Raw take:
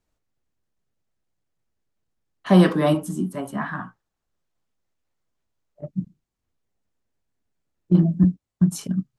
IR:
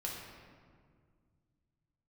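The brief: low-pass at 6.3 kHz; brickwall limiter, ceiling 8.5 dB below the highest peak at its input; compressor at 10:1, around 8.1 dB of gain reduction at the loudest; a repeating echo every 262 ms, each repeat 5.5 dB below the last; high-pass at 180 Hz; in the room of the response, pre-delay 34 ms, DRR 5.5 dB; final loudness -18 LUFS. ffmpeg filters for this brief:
-filter_complex "[0:a]highpass=180,lowpass=6300,acompressor=threshold=0.112:ratio=10,alimiter=limit=0.1:level=0:latency=1,aecho=1:1:262|524|786|1048|1310|1572|1834:0.531|0.281|0.149|0.079|0.0419|0.0222|0.0118,asplit=2[s0][s1];[1:a]atrim=start_sample=2205,adelay=34[s2];[s1][s2]afir=irnorm=-1:irlink=0,volume=0.473[s3];[s0][s3]amix=inputs=2:normalize=0,volume=3.55"

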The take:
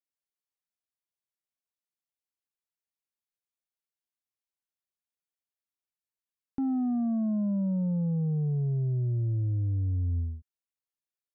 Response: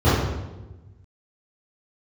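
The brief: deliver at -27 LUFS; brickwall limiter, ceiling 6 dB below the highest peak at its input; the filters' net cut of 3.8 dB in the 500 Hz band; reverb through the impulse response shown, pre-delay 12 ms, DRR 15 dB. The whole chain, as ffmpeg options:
-filter_complex "[0:a]equalizer=f=500:t=o:g=-5,alimiter=level_in=2.37:limit=0.0631:level=0:latency=1,volume=0.422,asplit=2[s0][s1];[1:a]atrim=start_sample=2205,adelay=12[s2];[s1][s2]afir=irnorm=-1:irlink=0,volume=0.0133[s3];[s0][s3]amix=inputs=2:normalize=0,volume=2.11"

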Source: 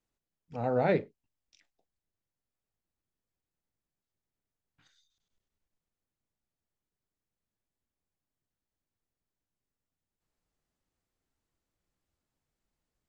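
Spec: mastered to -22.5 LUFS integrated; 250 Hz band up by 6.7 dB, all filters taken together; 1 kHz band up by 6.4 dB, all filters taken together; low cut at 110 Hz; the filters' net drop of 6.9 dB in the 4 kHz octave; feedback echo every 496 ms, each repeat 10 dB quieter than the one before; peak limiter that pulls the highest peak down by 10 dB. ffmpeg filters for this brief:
-af "highpass=110,equalizer=f=250:t=o:g=8.5,equalizer=f=1000:t=o:g=9,equalizer=f=4000:t=o:g=-8.5,alimiter=limit=0.0944:level=0:latency=1,aecho=1:1:496|992|1488|1984:0.316|0.101|0.0324|0.0104,volume=3.55"

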